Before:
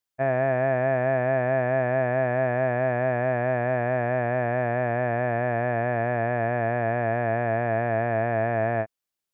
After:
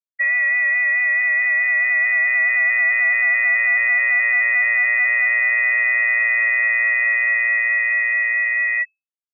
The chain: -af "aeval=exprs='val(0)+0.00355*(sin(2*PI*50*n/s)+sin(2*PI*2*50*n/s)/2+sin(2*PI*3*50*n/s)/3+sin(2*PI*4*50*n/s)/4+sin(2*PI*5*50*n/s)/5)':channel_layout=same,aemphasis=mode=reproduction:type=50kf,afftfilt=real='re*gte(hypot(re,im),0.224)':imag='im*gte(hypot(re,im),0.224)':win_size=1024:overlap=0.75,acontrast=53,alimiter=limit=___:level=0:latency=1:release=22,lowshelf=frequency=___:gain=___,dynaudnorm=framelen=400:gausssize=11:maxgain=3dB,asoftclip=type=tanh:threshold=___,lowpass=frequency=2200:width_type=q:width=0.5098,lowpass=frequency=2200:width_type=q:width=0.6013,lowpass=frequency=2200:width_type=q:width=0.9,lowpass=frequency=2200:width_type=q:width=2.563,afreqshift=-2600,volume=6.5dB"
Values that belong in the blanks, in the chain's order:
-16dB, 480, -4.5, -18dB